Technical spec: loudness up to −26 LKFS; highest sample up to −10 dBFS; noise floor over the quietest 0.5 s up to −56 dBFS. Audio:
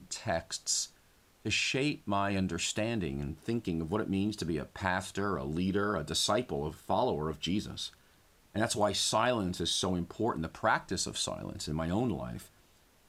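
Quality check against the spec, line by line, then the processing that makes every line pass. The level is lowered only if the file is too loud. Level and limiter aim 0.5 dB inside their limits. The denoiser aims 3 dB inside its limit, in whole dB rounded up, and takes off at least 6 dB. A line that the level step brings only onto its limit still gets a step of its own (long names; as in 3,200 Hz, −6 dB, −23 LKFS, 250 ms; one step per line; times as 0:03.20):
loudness −32.5 LKFS: in spec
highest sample −14.0 dBFS: in spec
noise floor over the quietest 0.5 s −64 dBFS: in spec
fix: no processing needed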